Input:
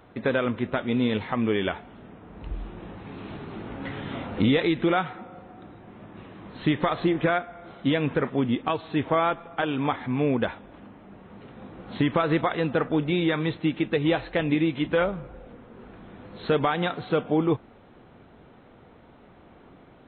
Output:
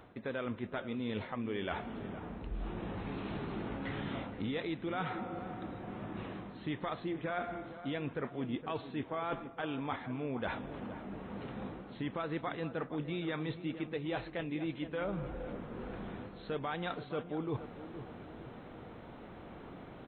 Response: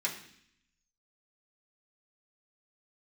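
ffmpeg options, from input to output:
-filter_complex "[0:a]areverse,acompressor=threshold=-38dB:ratio=6,areverse,asplit=2[a][b];[b]adelay=465,lowpass=f=1.4k:p=1,volume=-11.5dB,asplit=2[c][d];[d]adelay=465,lowpass=f=1.4k:p=1,volume=0.53,asplit=2[e][f];[f]adelay=465,lowpass=f=1.4k:p=1,volume=0.53,asplit=2[g][h];[h]adelay=465,lowpass=f=1.4k:p=1,volume=0.53,asplit=2[i][j];[j]adelay=465,lowpass=f=1.4k:p=1,volume=0.53,asplit=2[k][l];[l]adelay=465,lowpass=f=1.4k:p=1,volume=0.53[m];[a][c][e][g][i][k][m]amix=inputs=7:normalize=0,volume=2dB"

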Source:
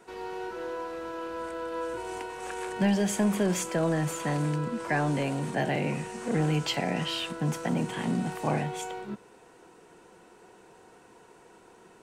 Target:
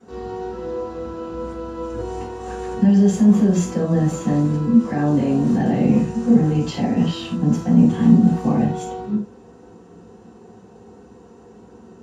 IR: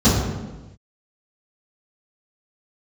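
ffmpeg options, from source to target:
-filter_complex "[0:a]asettb=1/sr,asplit=3[a][b][c];[a]atrim=end=5.394[d];[b]atrim=start=5.39:end=6,asetpts=PTS-STARTPTS,afade=t=in:d=0.004:c=qsin,afade=t=out:st=0.606:d=0.004:c=qsin,aeval=exprs='val(0)+0.5*0.00841*sgn(val(0))':c=same[e];[c]atrim=start=5.996[f];[d][e]acrossfade=d=0.004:c1=hsin:c2=qsin[g];[g][f]acrossfade=d=0.004:c1=qsin:c2=hsin,alimiter=limit=-22dB:level=0:latency=1:release=16[h];[1:a]atrim=start_sample=2205,atrim=end_sample=4410[i];[h][i]afir=irnorm=-1:irlink=0,volume=-17.5dB"

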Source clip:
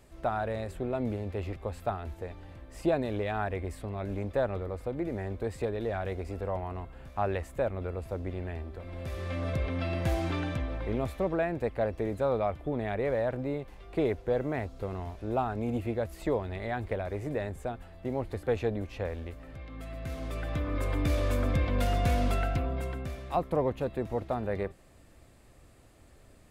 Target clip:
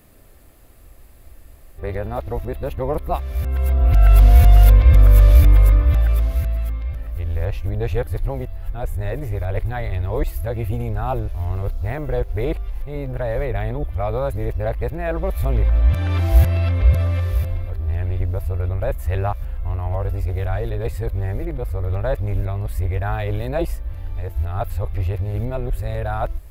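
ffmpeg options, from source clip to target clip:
-af "areverse,asubboost=boost=11.5:cutoff=63,aexciter=amount=6.4:drive=3.8:freq=11k,volume=5.5dB"

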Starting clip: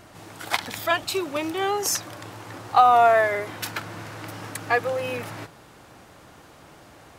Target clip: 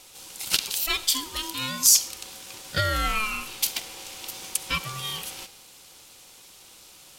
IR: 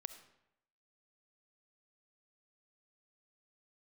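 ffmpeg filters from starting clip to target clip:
-filter_complex "[0:a]aeval=exprs='val(0)*sin(2*PI*650*n/s)':c=same,aexciter=amount=6.8:drive=5.4:freq=2.6k,asplit=2[a][b];[1:a]atrim=start_sample=2205[c];[b][c]afir=irnorm=-1:irlink=0,volume=5dB[d];[a][d]amix=inputs=2:normalize=0,volume=-13.5dB"

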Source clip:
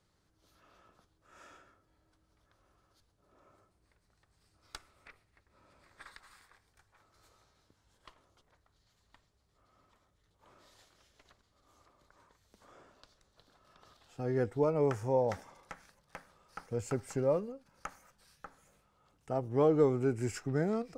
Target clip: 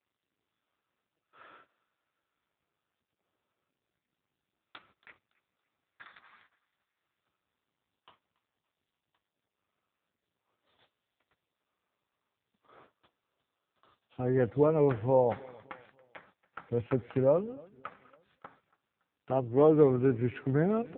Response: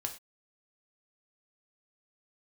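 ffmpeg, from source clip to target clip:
-filter_complex "[0:a]aemphasis=mode=production:type=50kf,agate=range=-30dB:threshold=-58dB:ratio=16:detection=peak,acontrast=24,asplit=2[a][b];[b]aecho=0:1:282|564|846:0.0631|0.0265|0.0111[c];[a][c]amix=inputs=2:normalize=0" -ar 8000 -c:a libopencore_amrnb -b:a 5900

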